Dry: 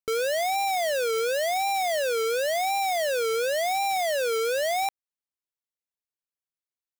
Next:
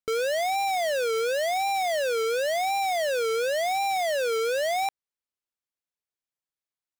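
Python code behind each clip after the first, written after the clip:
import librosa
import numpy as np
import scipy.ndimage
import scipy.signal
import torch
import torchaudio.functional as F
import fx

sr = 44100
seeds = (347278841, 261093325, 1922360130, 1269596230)

y = fx.high_shelf(x, sr, hz=9000.0, db=-6.5)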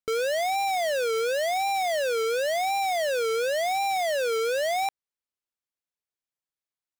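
y = x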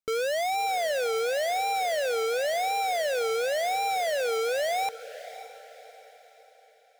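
y = fx.echo_diffused(x, sr, ms=578, feedback_pct=44, wet_db=-15.0)
y = F.gain(torch.from_numpy(y), -1.5).numpy()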